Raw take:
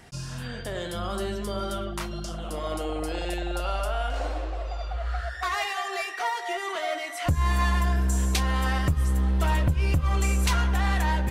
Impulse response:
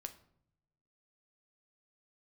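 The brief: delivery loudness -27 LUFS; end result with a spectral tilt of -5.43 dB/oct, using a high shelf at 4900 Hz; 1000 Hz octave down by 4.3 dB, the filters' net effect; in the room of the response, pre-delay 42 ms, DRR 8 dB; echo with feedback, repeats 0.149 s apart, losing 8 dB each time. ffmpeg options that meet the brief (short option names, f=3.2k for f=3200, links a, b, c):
-filter_complex "[0:a]equalizer=f=1k:t=o:g=-5.5,highshelf=f=4.9k:g=-3.5,aecho=1:1:149|298|447|596|745:0.398|0.159|0.0637|0.0255|0.0102,asplit=2[a][b];[1:a]atrim=start_sample=2205,adelay=42[c];[b][c]afir=irnorm=-1:irlink=0,volume=-4dB[d];[a][d]amix=inputs=2:normalize=0,volume=1dB"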